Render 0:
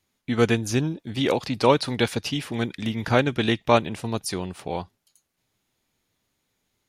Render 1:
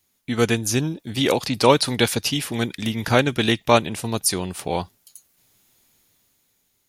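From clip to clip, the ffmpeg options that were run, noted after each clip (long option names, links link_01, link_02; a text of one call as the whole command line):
ffmpeg -i in.wav -af "aemphasis=mode=production:type=50kf,dynaudnorm=framelen=210:gausssize=9:maxgain=8dB" out.wav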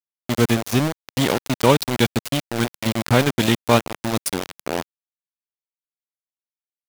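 ffmpeg -i in.wav -af "bass=frequency=250:gain=10,treble=frequency=4000:gain=-2,aeval=exprs='val(0)*gte(abs(val(0)),0.168)':channel_layout=same,lowshelf=frequency=100:gain=-8,volume=-1dB" out.wav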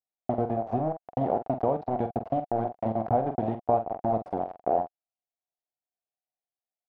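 ffmpeg -i in.wav -filter_complex "[0:a]acompressor=threshold=-22dB:ratio=10,lowpass=frequency=720:width_type=q:width=8,asplit=2[link_01][link_02];[link_02]adelay=45,volume=-9dB[link_03];[link_01][link_03]amix=inputs=2:normalize=0,volume=-5dB" out.wav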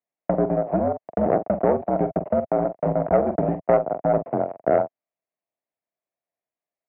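ffmpeg -i in.wav -af "equalizer=frequency=1500:width_type=o:width=0.32:gain=-7,aeval=exprs='(tanh(6.31*val(0)+0.4)-tanh(0.4))/6.31':channel_layout=same,highpass=frequency=180:width_type=q:width=0.5412,highpass=frequency=180:width_type=q:width=1.307,lowpass=frequency=2400:width_type=q:width=0.5176,lowpass=frequency=2400:width_type=q:width=0.7071,lowpass=frequency=2400:width_type=q:width=1.932,afreqshift=-60,volume=8.5dB" out.wav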